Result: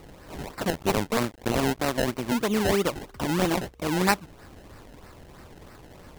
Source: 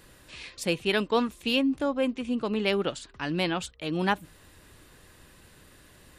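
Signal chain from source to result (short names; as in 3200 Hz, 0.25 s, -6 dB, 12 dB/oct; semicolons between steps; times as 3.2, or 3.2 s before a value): 0.7–2.32 cycle switcher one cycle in 2, muted; in parallel at -2 dB: compressor, threshold -37 dBFS, peak gain reduction 16.5 dB; on the sum: decimation with a swept rate 26×, swing 100% 3.1 Hz; gain +2 dB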